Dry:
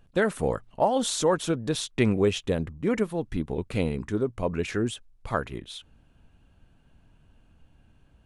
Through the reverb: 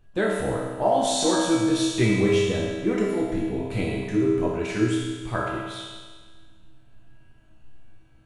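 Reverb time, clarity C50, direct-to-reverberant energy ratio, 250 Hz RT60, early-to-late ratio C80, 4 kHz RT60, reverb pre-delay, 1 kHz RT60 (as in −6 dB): 1.5 s, −1.0 dB, −7.0 dB, 1.5 s, 1.0 dB, 1.5 s, 3 ms, 1.5 s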